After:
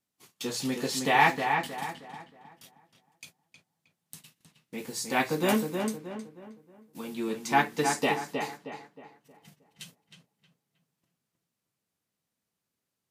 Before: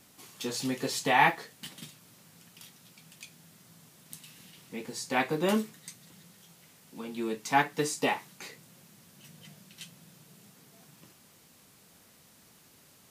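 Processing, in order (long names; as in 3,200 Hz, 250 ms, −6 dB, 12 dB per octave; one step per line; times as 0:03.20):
noise gate −49 dBFS, range −28 dB
0:04.78–0:07.14: high-shelf EQ 8,900 Hz +8 dB
feedback echo with a low-pass in the loop 314 ms, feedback 39%, low-pass 2,600 Hz, level −5 dB
level +1 dB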